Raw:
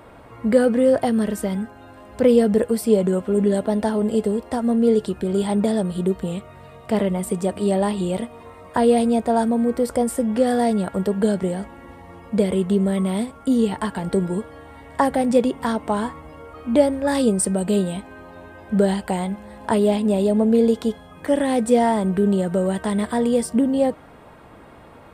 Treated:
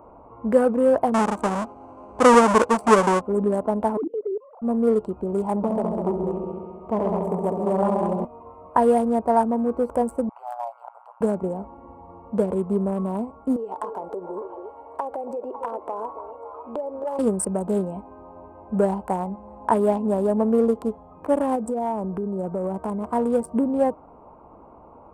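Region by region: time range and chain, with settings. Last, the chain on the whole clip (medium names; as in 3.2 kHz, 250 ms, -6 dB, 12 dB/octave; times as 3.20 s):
1.14–3.21 s: square wave that keeps the level + steep low-pass 9.5 kHz + bass shelf 120 Hz -9.5 dB
3.97–4.62 s: formants replaced by sine waves + hum notches 60/120/180/240/300 Hz + level held to a coarse grid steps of 23 dB
5.56–8.25 s: treble shelf 3.8 kHz -9 dB + multi-head delay 67 ms, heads all three, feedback 54%, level -7 dB + transformer saturation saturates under 350 Hz
10.29–11.21 s: steep high-pass 710 Hz 72 dB/octave + AM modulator 120 Hz, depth 100% + decimation joined by straight lines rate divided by 2×
13.56–17.19 s: resonant low shelf 290 Hz -13.5 dB, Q 1.5 + compression, threshold -25 dBFS + repeats whose band climbs or falls 276 ms, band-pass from 430 Hz, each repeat 1.4 oct, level -5 dB
21.55–23.05 s: Butterworth band-stop 2.8 kHz, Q 3.8 + peaking EQ 1 kHz -3 dB 0.26 oct + compression 12:1, threshold -19 dBFS
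whole clip: local Wiener filter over 25 samples; ten-band graphic EQ 125 Hz -7 dB, 1 kHz +10 dB, 2 kHz -3 dB, 4 kHz -12 dB; trim -2.5 dB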